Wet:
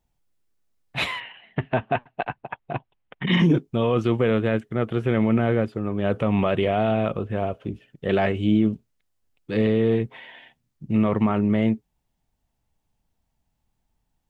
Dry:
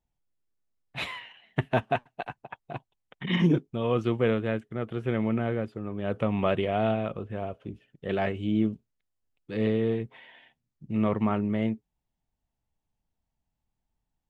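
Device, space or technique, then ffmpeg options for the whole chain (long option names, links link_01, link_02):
stacked limiters: -filter_complex "[0:a]alimiter=limit=-15.5dB:level=0:latency=1:release=187,alimiter=limit=-18.5dB:level=0:latency=1:release=24,asettb=1/sr,asplit=3[link_01][link_02][link_03];[link_01]atrim=end=1.204[link_04];[link_02]atrim=start=1.2:end=3.27,asetpts=PTS-STARTPTS,afade=type=in:duration=0.004:curve=qsin,afade=type=out:start_time=2.066:duration=0.004:curve=qsin,lowpass=frequency=3200:width=0.5412,lowpass=frequency=3200:width=1.3066[link_05];[link_03]atrim=start=3.266[link_06];[link_04][link_05]acrossfade=duration=0.004:curve1=hsin:curve2=qsin[link_07];[link_07][link_06]acrossfade=duration=0.004:curve1=qsin:curve2=hsin,volume=8dB"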